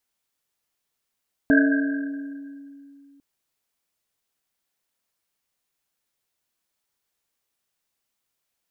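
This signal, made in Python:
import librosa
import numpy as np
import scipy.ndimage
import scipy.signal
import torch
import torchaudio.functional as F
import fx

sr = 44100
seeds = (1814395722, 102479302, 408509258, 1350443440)

y = fx.risset_drum(sr, seeds[0], length_s=1.7, hz=280.0, decay_s=2.82, noise_hz=1600.0, noise_width_hz=110.0, noise_pct=30)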